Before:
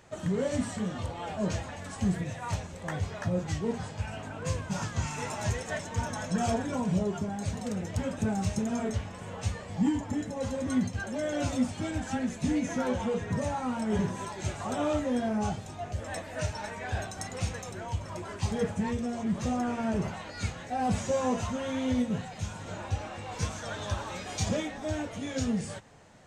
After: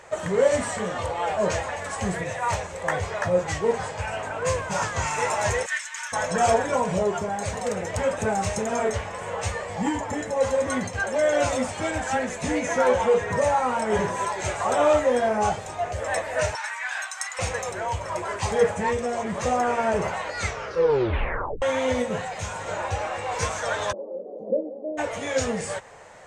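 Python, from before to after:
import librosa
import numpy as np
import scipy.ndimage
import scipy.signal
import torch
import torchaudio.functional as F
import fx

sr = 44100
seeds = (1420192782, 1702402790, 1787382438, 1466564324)

y = fx.highpass(x, sr, hz=1500.0, slope=24, at=(5.65, 6.12), fade=0.02)
y = fx.highpass(y, sr, hz=1100.0, slope=24, at=(16.55, 17.39))
y = fx.ellip_bandpass(y, sr, low_hz=210.0, high_hz=550.0, order=3, stop_db=60, at=(23.91, 24.97), fade=0.02)
y = fx.edit(y, sr, fx.tape_stop(start_s=20.39, length_s=1.23), tone=tone)
y = fx.graphic_eq(y, sr, hz=(125, 250, 500, 1000, 2000, 8000), db=(-3, -7, 10, 7, 8, 7))
y = y * 10.0 ** (2.5 / 20.0)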